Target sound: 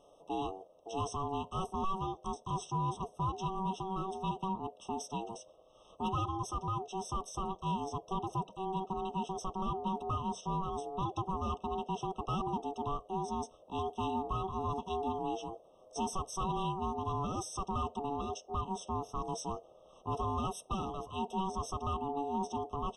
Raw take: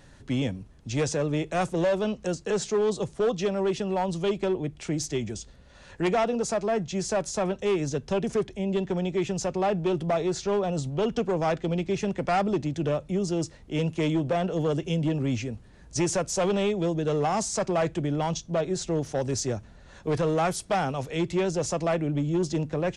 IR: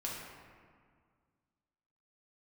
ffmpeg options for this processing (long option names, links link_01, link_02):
-af "aeval=exprs='val(0)*sin(2*PI*570*n/s)':channel_layout=same,afftfilt=real='re*eq(mod(floor(b*sr/1024/1300),2),0)':imag='im*eq(mod(floor(b*sr/1024/1300),2),0)':win_size=1024:overlap=0.75,volume=-6.5dB"